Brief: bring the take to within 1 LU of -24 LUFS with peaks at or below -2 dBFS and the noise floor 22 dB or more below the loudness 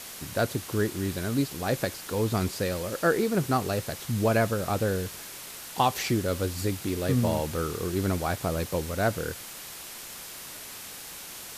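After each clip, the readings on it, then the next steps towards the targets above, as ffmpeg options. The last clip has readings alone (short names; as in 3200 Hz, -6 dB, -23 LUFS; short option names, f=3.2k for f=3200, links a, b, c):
noise floor -42 dBFS; noise floor target -51 dBFS; loudness -29.0 LUFS; peak -10.5 dBFS; loudness target -24.0 LUFS
-> -af "afftdn=nr=9:nf=-42"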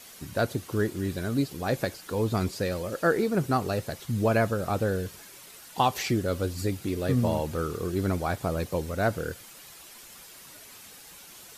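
noise floor -48 dBFS; noise floor target -51 dBFS
-> -af "afftdn=nr=6:nf=-48"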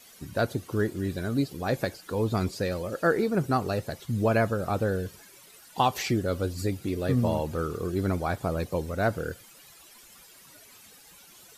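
noise floor -53 dBFS; loudness -28.5 LUFS; peak -11.0 dBFS; loudness target -24.0 LUFS
-> -af "volume=4.5dB"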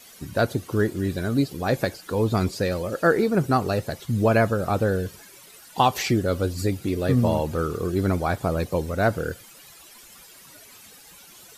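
loudness -24.0 LUFS; peak -6.5 dBFS; noise floor -48 dBFS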